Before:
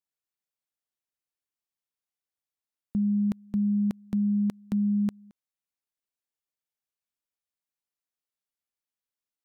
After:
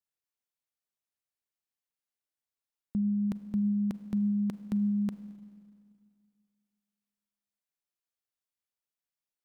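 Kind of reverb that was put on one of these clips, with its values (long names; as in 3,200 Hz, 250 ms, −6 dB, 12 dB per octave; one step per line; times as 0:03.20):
four-comb reverb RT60 2.2 s, combs from 33 ms, DRR 12.5 dB
level −3 dB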